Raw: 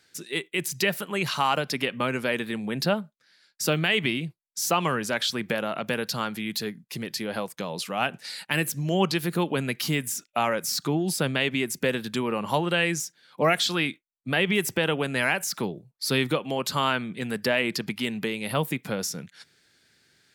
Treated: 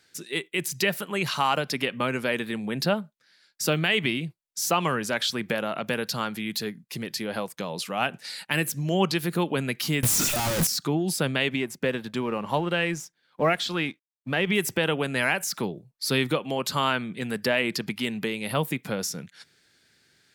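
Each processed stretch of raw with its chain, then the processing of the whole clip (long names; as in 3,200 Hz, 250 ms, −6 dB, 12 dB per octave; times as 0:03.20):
0:10.03–0:10.67: sign of each sample alone + bass and treble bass +10 dB, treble +6 dB
0:11.56–0:14.47: mu-law and A-law mismatch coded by A + high-shelf EQ 4,200 Hz −9 dB
whole clip: no processing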